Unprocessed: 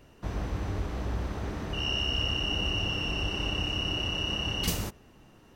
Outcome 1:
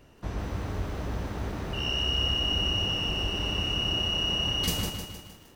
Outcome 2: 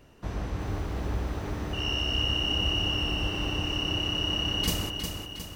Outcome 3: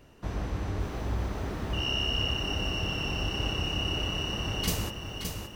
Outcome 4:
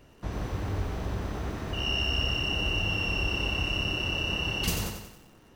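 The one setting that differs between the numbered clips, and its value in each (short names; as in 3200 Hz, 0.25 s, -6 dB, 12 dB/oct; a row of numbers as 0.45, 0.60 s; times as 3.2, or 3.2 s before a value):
lo-fi delay, time: 155, 360, 572, 92 ms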